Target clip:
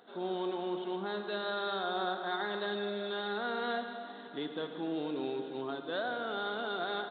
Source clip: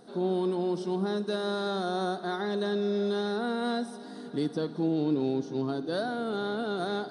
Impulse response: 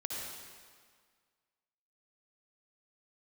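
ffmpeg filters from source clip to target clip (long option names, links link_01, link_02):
-filter_complex "[0:a]highpass=frequency=1300:poles=1,asplit=2[link_01][link_02];[1:a]atrim=start_sample=2205,asetrate=36603,aresample=44100[link_03];[link_02][link_03]afir=irnorm=-1:irlink=0,volume=-6dB[link_04];[link_01][link_04]amix=inputs=2:normalize=0,aresample=8000,aresample=44100"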